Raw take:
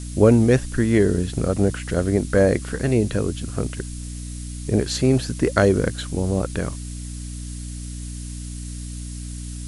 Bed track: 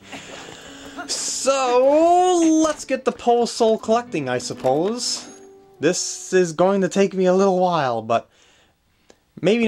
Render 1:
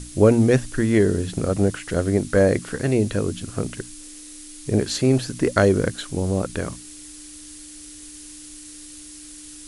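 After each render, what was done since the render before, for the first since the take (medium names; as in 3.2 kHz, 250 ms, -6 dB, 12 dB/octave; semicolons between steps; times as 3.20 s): hum notches 60/120/180/240 Hz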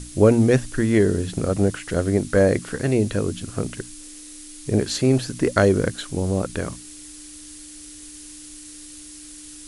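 no audible change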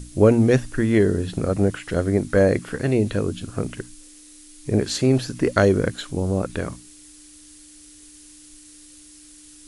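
noise print and reduce 6 dB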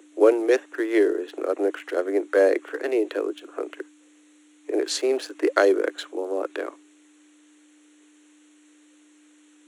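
local Wiener filter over 9 samples; steep high-pass 300 Hz 96 dB/octave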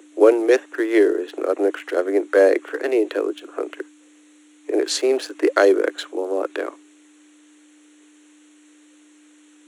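trim +4 dB; peak limiter -2 dBFS, peak gain reduction 2 dB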